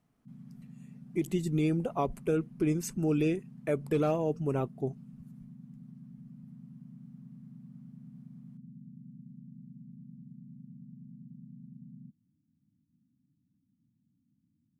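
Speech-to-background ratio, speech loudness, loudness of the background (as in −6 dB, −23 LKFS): 19.0 dB, −31.5 LKFS, −50.5 LKFS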